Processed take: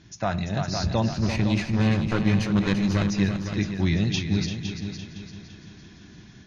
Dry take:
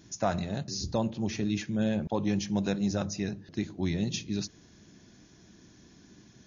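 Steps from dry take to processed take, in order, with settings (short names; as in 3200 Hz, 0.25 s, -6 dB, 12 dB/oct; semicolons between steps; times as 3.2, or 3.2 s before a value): 1.11–3.04 minimum comb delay 0.46 ms; graphic EQ 250/500/1000 Hz -6/-7/-3 dB; multi-head echo 0.17 s, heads second and third, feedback 44%, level -9 dB; AGC gain up to 4 dB; LPF 3700 Hz 12 dB/oct; gain +6.5 dB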